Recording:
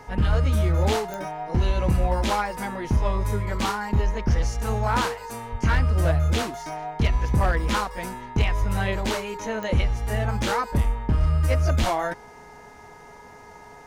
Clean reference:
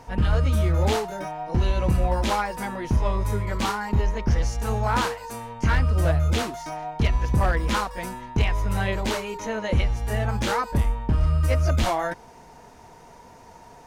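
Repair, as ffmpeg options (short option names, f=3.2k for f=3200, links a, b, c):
-filter_complex "[0:a]adeclick=t=4,bandreject=f=418.1:t=h:w=4,bandreject=f=836.2:t=h:w=4,bandreject=f=1.2543k:t=h:w=4,bandreject=f=1.6724k:t=h:w=4,bandreject=f=2.0905k:t=h:w=4,asplit=3[a][b][c];[a]afade=t=out:st=5.51:d=0.02[d];[b]highpass=f=140:w=0.5412,highpass=f=140:w=1.3066,afade=t=in:st=5.51:d=0.02,afade=t=out:st=5.63:d=0.02[e];[c]afade=t=in:st=5.63:d=0.02[f];[d][e][f]amix=inputs=3:normalize=0,asplit=3[g][h][i];[g]afade=t=out:st=8.59:d=0.02[j];[h]highpass=f=140:w=0.5412,highpass=f=140:w=1.3066,afade=t=in:st=8.59:d=0.02,afade=t=out:st=8.71:d=0.02[k];[i]afade=t=in:st=8.71:d=0.02[l];[j][k][l]amix=inputs=3:normalize=0"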